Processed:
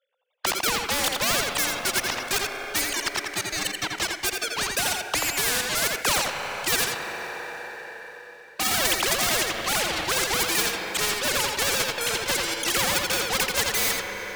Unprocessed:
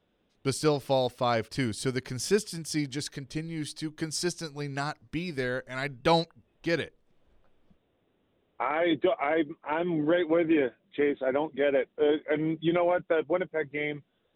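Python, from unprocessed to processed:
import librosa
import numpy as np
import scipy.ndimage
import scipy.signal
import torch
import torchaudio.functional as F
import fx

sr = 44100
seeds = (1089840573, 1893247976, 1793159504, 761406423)

p1 = fx.sine_speech(x, sr)
p2 = scipy.signal.sosfilt(scipy.signal.butter(4, 620.0, 'highpass', fs=sr, output='sos'), p1)
p3 = fx.level_steps(p2, sr, step_db=11)
p4 = p2 + F.gain(torch.from_numpy(p3), -1.0).numpy()
p5 = fx.leveller(p4, sr, passes=5)
p6 = p5 + fx.echo_single(p5, sr, ms=84, db=-8.0, dry=0)
p7 = fx.rev_schroeder(p6, sr, rt60_s=4.0, comb_ms=31, drr_db=18.0)
y = fx.spectral_comp(p7, sr, ratio=4.0)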